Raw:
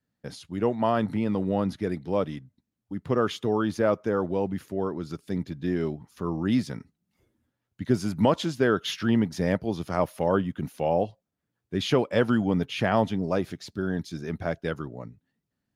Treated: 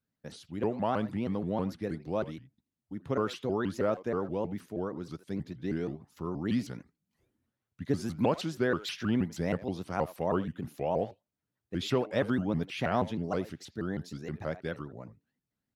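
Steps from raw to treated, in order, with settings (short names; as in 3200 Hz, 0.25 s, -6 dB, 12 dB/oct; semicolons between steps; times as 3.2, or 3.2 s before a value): speakerphone echo 80 ms, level -16 dB; shaped vibrato saw up 6.3 Hz, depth 250 cents; gain -6 dB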